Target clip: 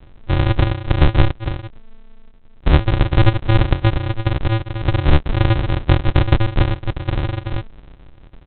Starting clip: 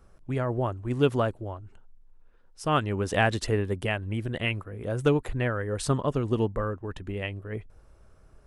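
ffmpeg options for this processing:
-af "aresample=8000,acrusher=samples=36:mix=1:aa=0.000001,aresample=44100,alimiter=level_in=5.01:limit=0.891:release=50:level=0:latency=1,volume=0.891"

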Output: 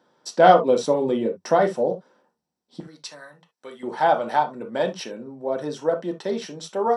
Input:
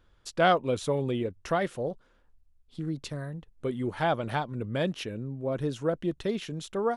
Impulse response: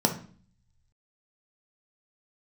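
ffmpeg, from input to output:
-filter_complex "[0:a]asetnsamples=n=441:p=0,asendcmd='2.8 highpass f 1300;3.83 highpass f 600',highpass=380[s0];[1:a]atrim=start_sample=2205,atrim=end_sample=3528[s1];[s0][s1]afir=irnorm=-1:irlink=0,volume=0.596"

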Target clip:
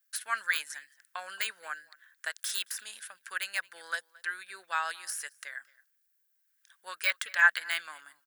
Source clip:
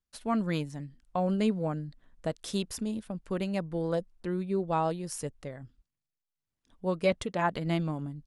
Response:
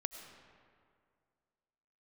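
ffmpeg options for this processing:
-filter_complex "[0:a]deesser=1,highpass=f=1600:t=q:w=7.1,aemphasis=mode=production:type=riaa,asplit=2[s0][s1];[s1]adelay=221.6,volume=0.0708,highshelf=f=4000:g=-4.99[s2];[s0][s2]amix=inputs=2:normalize=0"

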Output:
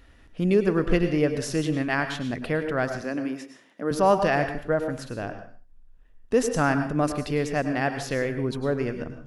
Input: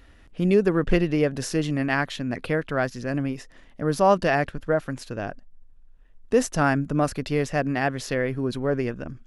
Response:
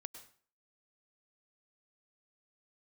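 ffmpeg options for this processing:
-filter_complex "[0:a]asettb=1/sr,asplit=3[s0][s1][s2];[s0]atrim=end=3.014[s3];[s1]atrim=start=3.01:end=3.91,asetpts=PTS-STARTPTS,afade=t=in:d=0.004:c=qsin,afade=t=out:st=0.896:d=0.004:c=qsin,highpass=f=210:w=0.5412,highpass=f=210:w=1.3066[s4];[s2]atrim=start=3.906[s5];[s3][s4]acrossfade=d=0.004:c1=hsin:c2=qsin[s6];[s6][s5]acrossfade=d=0.004:c1=qsin:c2=hsin[s7];[1:a]atrim=start_sample=2205,afade=t=out:st=0.4:d=0.01,atrim=end_sample=18081[s8];[s7][s8]afir=irnorm=-1:irlink=0,volume=1.5"

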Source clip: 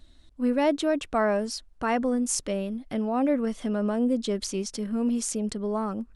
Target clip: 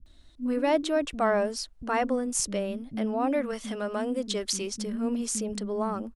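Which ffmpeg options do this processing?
-filter_complex "[0:a]asettb=1/sr,asplit=3[s0][s1][s2];[s0]atrim=end=3.274[s3];[s1]atrim=start=3.27:end=4.61,asetpts=PTS-STARTPTS,afade=t=in:d=0.004:c=qsin,afade=t=out:st=1.336:d=0.004:c=qsin,tiltshelf=f=740:g=-4.5[s4];[s2]atrim=start=4.606[s5];[s3][s4]acrossfade=d=0.004:c1=hsin:c2=qsin[s6];[s6][s5]acrossfade=d=0.004:c1=qsin:c2=hsin,acrossover=split=240[s7][s8];[s8]adelay=60[s9];[s7][s9]amix=inputs=2:normalize=0,acontrast=42,volume=0.531"

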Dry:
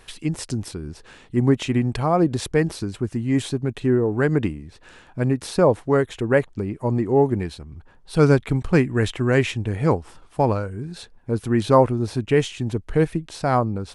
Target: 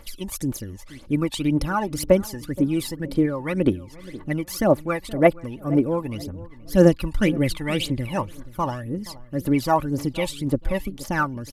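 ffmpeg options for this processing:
-filter_complex "[0:a]highshelf=f=9100:g=9.5,aecho=1:1:4.2:0.45,asetrate=53361,aresample=44100,aphaser=in_gain=1:out_gain=1:delay=1.2:decay=0.71:speed=1.9:type=triangular,asplit=2[s0][s1];[s1]adelay=474,lowpass=f=990:p=1,volume=0.133,asplit=2[s2][s3];[s3]adelay=474,lowpass=f=990:p=1,volume=0.37,asplit=2[s4][s5];[s5]adelay=474,lowpass=f=990:p=1,volume=0.37[s6];[s2][s4][s6]amix=inputs=3:normalize=0[s7];[s0][s7]amix=inputs=2:normalize=0,volume=0.531"

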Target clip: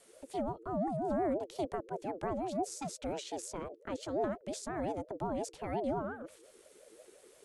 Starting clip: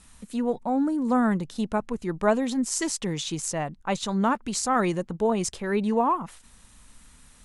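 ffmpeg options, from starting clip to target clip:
-filter_complex "[0:a]acrossover=split=320[s0][s1];[s1]acompressor=threshold=0.0158:ratio=5[s2];[s0][s2]amix=inputs=2:normalize=0,afreqshift=-66,aeval=exprs='val(0)*sin(2*PI*480*n/s+480*0.2/5.7*sin(2*PI*5.7*n/s))':c=same,volume=0.596"

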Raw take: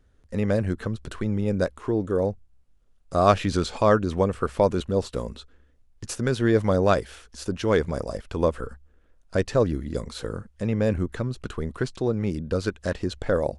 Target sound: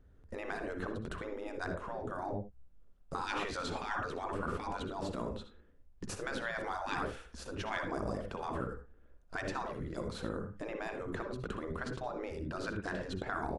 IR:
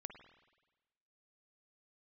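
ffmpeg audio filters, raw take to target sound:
-filter_complex "[0:a]highshelf=f=2100:g=-12[s0];[1:a]atrim=start_sample=2205,afade=t=out:st=0.16:d=0.01,atrim=end_sample=7497[s1];[s0][s1]afir=irnorm=-1:irlink=0,afftfilt=real='re*lt(hypot(re,im),0.0708)':imag='im*lt(hypot(re,im),0.0708)':win_size=1024:overlap=0.75,aecho=1:1:64|78:0.2|0.158,volume=1.88"

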